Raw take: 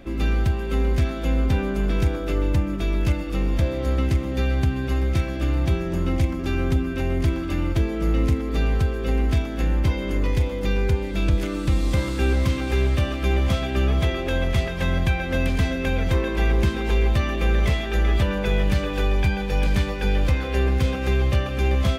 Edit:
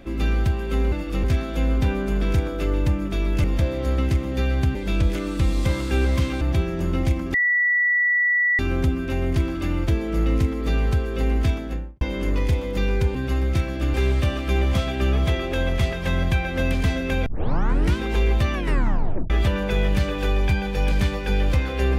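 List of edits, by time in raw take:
3.12–3.44 move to 0.92
4.75–5.54 swap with 11.03–12.69
6.47 add tone 1950 Hz -16.5 dBFS 1.25 s
9.4–9.89 studio fade out
16.01 tape start 0.71 s
17.29 tape stop 0.76 s

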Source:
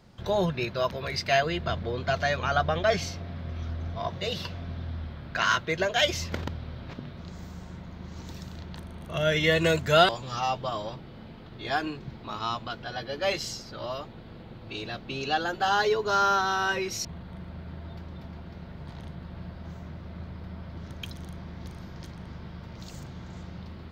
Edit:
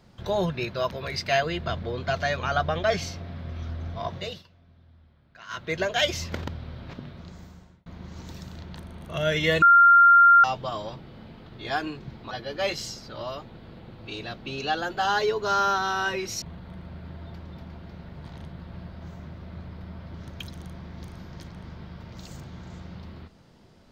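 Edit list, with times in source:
4.18–5.73 dip -20.5 dB, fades 0.25 s
6.88–7.86 fade out equal-power
9.62–10.44 bleep 1390 Hz -11 dBFS
12.31–12.94 cut

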